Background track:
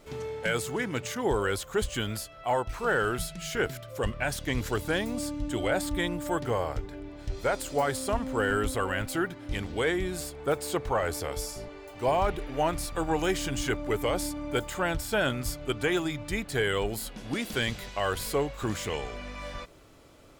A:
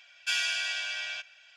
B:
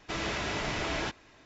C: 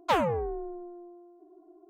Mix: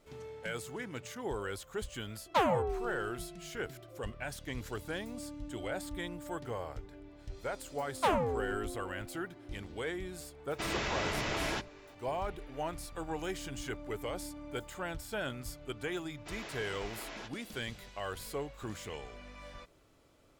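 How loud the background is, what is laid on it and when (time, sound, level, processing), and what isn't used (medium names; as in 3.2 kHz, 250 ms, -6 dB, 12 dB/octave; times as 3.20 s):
background track -10.5 dB
2.26 s: add C -3 dB
7.94 s: add C -4 dB
10.50 s: add B -2 dB
16.17 s: add B -12 dB + high-pass 290 Hz
not used: A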